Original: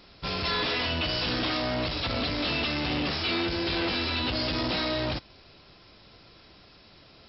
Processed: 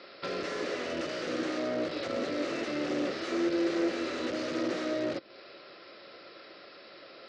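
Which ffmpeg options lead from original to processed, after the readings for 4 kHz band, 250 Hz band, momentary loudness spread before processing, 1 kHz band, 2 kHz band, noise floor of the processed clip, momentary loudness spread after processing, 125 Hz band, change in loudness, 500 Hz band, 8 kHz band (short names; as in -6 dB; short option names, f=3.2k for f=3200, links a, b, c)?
-13.0 dB, -0.5 dB, 2 LU, -6.5 dB, -7.0 dB, -51 dBFS, 20 LU, -15.5 dB, -5.0 dB, +1.0 dB, n/a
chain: -filter_complex "[0:a]aeval=exprs='(mod(16.8*val(0)+1,2)-1)/16.8':c=same,highpass=340,equalizer=f=350:t=q:w=4:g=6,equalizer=f=550:t=q:w=4:g=10,equalizer=f=910:t=q:w=4:g=-6,equalizer=f=1.3k:t=q:w=4:g=6,equalizer=f=1.9k:t=q:w=4:g=5,equalizer=f=3.3k:t=q:w=4:g=-3,lowpass=f=5k:w=0.5412,lowpass=f=5k:w=1.3066,acrossover=split=460[a][b];[b]acompressor=threshold=-41dB:ratio=6[c];[a][c]amix=inputs=2:normalize=0,volume=3dB"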